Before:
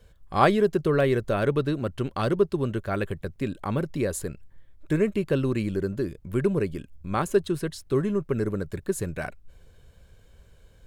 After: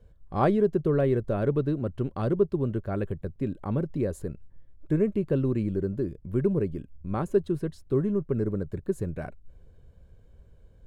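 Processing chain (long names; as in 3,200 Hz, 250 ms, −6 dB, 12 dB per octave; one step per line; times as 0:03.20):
tilt shelving filter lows +8 dB, about 1,100 Hz
level −7.5 dB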